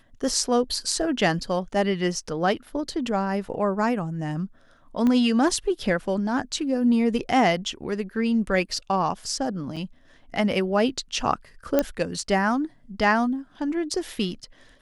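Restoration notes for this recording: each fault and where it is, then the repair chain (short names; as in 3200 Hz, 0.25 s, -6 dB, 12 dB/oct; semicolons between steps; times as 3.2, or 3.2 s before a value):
5.07 pop -14 dBFS
9.76–9.77 gap 5.9 ms
11.79 pop -7 dBFS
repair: de-click; interpolate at 9.76, 5.9 ms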